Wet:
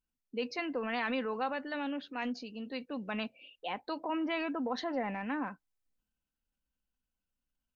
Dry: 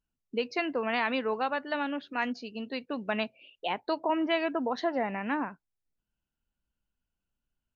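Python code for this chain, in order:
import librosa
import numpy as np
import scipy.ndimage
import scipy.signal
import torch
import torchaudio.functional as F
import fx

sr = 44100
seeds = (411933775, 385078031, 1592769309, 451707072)

y = fx.transient(x, sr, attack_db=-2, sustain_db=5)
y = y + 0.37 * np.pad(y, (int(3.9 * sr / 1000.0), 0))[:len(y)]
y = y * librosa.db_to_amplitude(-5.5)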